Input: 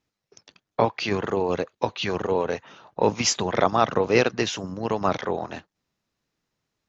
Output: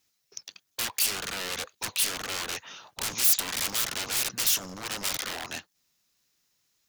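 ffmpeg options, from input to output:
-af "aeval=exprs='(tanh(7.94*val(0)+0.35)-tanh(0.35))/7.94':c=same,aeval=exprs='0.0282*(abs(mod(val(0)/0.0282+3,4)-2)-1)':c=same,crystalizer=i=9:c=0,volume=-5dB"

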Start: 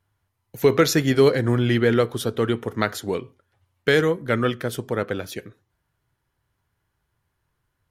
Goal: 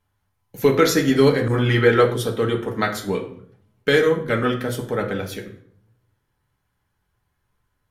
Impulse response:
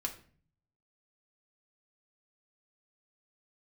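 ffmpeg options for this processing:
-filter_complex "[1:a]atrim=start_sample=2205,asetrate=33516,aresample=44100[a];[0:a][a]afir=irnorm=-1:irlink=0,asettb=1/sr,asplit=3[b][c][d];[b]atrim=end=1.484[e];[c]atrim=start=1.48:end=2.14,asetpts=PTS-STARTPTS,afade=t=in:d=0.004:c=qsin,afade=t=out:st=0.656:d=0.004:c=qsin,adynamicequalizer=threshold=0.0316:dfrequency=1200:dqfactor=0.71:tfrequency=1200:tqfactor=0.71:attack=5:release=100:ratio=0.375:range=3:mode=boostabove:tftype=bell[f];[d]atrim=start=2.136[g];[e][f]acrossfade=d=0.004:c1=hsin:c2=qsin[h];[h][g]acrossfade=d=0.004:c1=qsin:c2=hsin,volume=-1dB"

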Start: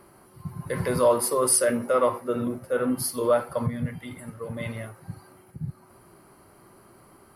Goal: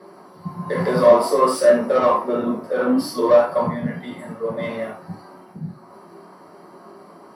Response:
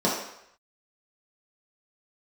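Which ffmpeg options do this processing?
-filter_complex "[0:a]asplit=2[a][b];[b]highpass=f=720:p=1,volume=18dB,asoftclip=type=tanh:threshold=-8dB[c];[a][c]amix=inputs=2:normalize=0,lowpass=f=5k:p=1,volume=-6dB,flanger=delay=10:depth=8.1:regen=86:speed=0.58:shape=sinusoidal[d];[1:a]atrim=start_sample=2205,atrim=end_sample=3969[e];[d][e]afir=irnorm=-1:irlink=0,volume=-11dB"

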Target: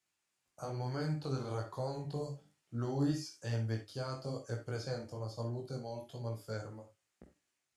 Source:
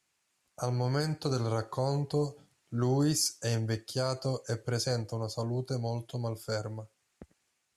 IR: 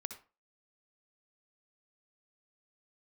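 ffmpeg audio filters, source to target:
-filter_complex "[0:a]acrossover=split=4200[a][b];[b]acompressor=threshold=-48dB:ratio=4:attack=1:release=60[c];[a][c]amix=inputs=2:normalize=0,flanger=delay=17:depth=5.2:speed=1.1[d];[1:a]atrim=start_sample=2205,atrim=end_sample=6174,asetrate=61740,aresample=44100[e];[d][e]afir=irnorm=-1:irlink=0,volume=1dB"

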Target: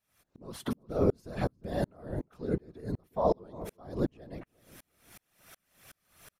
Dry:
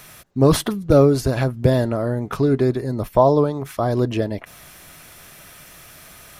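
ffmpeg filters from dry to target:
-filter_complex "[0:a]afftfilt=real='hypot(re,im)*cos(2*PI*random(0))':imag='hypot(re,im)*sin(2*PI*random(1))':win_size=512:overlap=0.75,asplit=2[a][b];[b]adelay=356,lowpass=f=2.2k:p=1,volume=-17dB,asplit=2[c][d];[d]adelay=356,lowpass=f=2.2k:p=1,volume=0.34,asplit=2[e][f];[f]adelay=356,lowpass=f=2.2k:p=1,volume=0.34[g];[a][c][e][g]amix=inputs=4:normalize=0,aeval=exprs='val(0)*pow(10,-38*if(lt(mod(-2.7*n/s,1),2*abs(-2.7)/1000),1-mod(-2.7*n/s,1)/(2*abs(-2.7)/1000),(mod(-2.7*n/s,1)-2*abs(-2.7)/1000)/(1-2*abs(-2.7)/1000))/20)':c=same"

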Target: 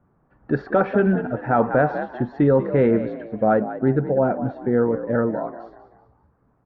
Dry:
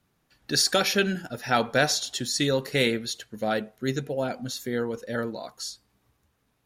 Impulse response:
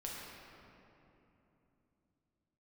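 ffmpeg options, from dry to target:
-filter_complex "[0:a]lowpass=f=1.3k:w=0.5412,lowpass=f=1.3k:w=1.3066,asplit=5[a][b][c][d][e];[b]adelay=192,afreqshift=55,volume=-13.5dB[f];[c]adelay=384,afreqshift=110,volume=-22.1dB[g];[d]adelay=576,afreqshift=165,volume=-30.8dB[h];[e]adelay=768,afreqshift=220,volume=-39.4dB[i];[a][f][g][h][i]amix=inputs=5:normalize=0,alimiter=level_in=16.5dB:limit=-1dB:release=50:level=0:latency=1,volume=-7dB"

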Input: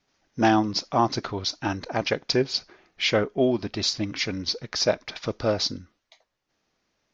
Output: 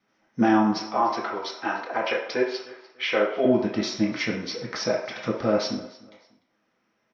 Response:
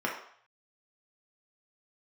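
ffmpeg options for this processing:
-filter_complex "[0:a]asettb=1/sr,asplit=3[a][b][c];[a]atrim=end=0.834[d];[b]atrim=start=0.83:end=3.45,asetpts=PTS-STARTPTS,afade=t=in:d=0.004:c=qsin,afade=t=out:st=2.616:d=0.004:c=qsin,acrossover=split=350 5800:gain=0.1 1 0.178[e][f][g];[e][f][g]amix=inputs=3:normalize=0[h];[c]atrim=start=3.446[i];[d][h]acrossfade=d=0.004:c1=hsin:c2=qsin[j];[j][i]acrossfade=d=0.004:c1=qsin:c2=hsin,alimiter=limit=-15dB:level=0:latency=1:release=55,aecho=1:1:298|596:0.0891|0.0267[k];[1:a]atrim=start_sample=2205[l];[k][l]afir=irnorm=-1:irlink=0,volume=-5dB"

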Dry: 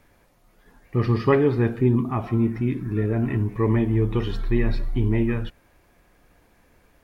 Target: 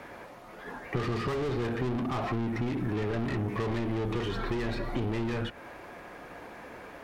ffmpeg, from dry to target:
-filter_complex "[0:a]asplit=2[a][b];[b]highpass=f=720:p=1,volume=36dB,asoftclip=type=tanh:threshold=-6dB[c];[a][c]amix=inputs=2:normalize=0,lowpass=f=1k:p=1,volume=-6dB,acrossover=split=120|2900[d][e][f];[d]acompressor=threshold=-28dB:ratio=4[g];[e]acompressor=threshold=-24dB:ratio=4[h];[f]acompressor=threshold=-38dB:ratio=4[i];[g][h][i]amix=inputs=3:normalize=0,volume=-7.5dB"

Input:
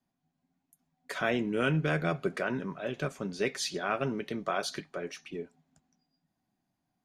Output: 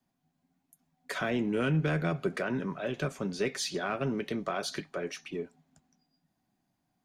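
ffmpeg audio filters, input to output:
-filter_complex "[0:a]acrossover=split=360[a][b];[b]acompressor=threshold=-33dB:ratio=3[c];[a][c]amix=inputs=2:normalize=0,asplit=2[d][e];[e]asoftclip=type=tanh:threshold=-31.5dB,volume=-8dB[f];[d][f]amix=inputs=2:normalize=0"

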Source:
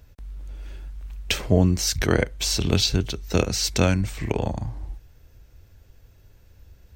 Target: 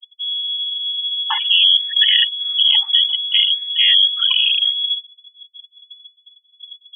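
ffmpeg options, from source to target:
-filter_complex "[0:a]apsyclip=19.5dB,afftfilt=real='re*gte(hypot(re,im),0.447)':imag='im*gte(hypot(re,im),0.447)':win_size=1024:overlap=0.75,asplit=2[a][b];[b]acrusher=bits=3:mix=0:aa=0.5,volume=-8.5dB[c];[a][c]amix=inputs=2:normalize=0,lowpass=f=2.9k:t=q:w=0.5098,lowpass=f=2.9k:t=q:w=0.6013,lowpass=f=2.9k:t=q:w=0.9,lowpass=f=2.9k:t=q:w=2.563,afreqshift=-3400,afftfilt=real='re*gte(b*sr/1024,780*pow(1700/780,0.5+0.5*sin(2*PI*0.59*pts/sr)))':imag='im*gte(b*sr/1024,780*pow(1700/780,0.5+0.5*sin(2*PI*0.59*pts/sr)))':win_size=1024:overlap=0.75,volume=-10dB"

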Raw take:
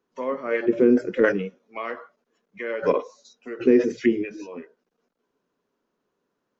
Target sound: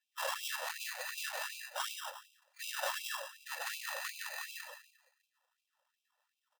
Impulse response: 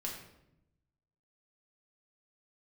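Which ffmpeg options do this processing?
-filter_complex "[0:a]aeval=exprs='if(lt(val(0),0),0.447*val(0),val(0))':c=same,asplit=2[a][b];[1:a]atrim=start_sample=2205[c];[b][c]afir=irnorm=-1:irlink=0,volume=-2.5dB[d];[a][d]amix=inputs=2:normalize=0,afftfilt=real='hypot(re,im)*cos(2*PI*random(0))':imag='hypot(re,im)*sin(2*PI*random(1))':win_size=512:overlap=0.75,asplit=2[e][f];[f]adelay=170,highpass=300,lowpass=3.4k,asoftclip=type=hard:threshold=-16dB,volume=-8dB[g];[e][g]amix=inputs=2:normalize=0,acrusher=samples=20:mix=1:aa=0.000001,acompressor=threshold=-27dB:ratio=20,bandreject=f=60:t=h:w=6,bandreject=f=120:t=h:w=6,bandreject=f=180:t=h:w=6,aecho=1:1:2.2:0.49,volume=30.5dB,asoftclip=hard,volume=-30.5dB,afftfilt=real='re*gte(b*sr/1024,510*pow(2300/510,0.5+0.5*sin(2*PI*2.7*pts/sr)))':imag='im*gte(b*sr/1024,510*pow(2300/510,0.5+0.5*sin(2*PI*2.7*pts/sr)))':win_size=1024:overlap=0.75,volume=3.5dB"

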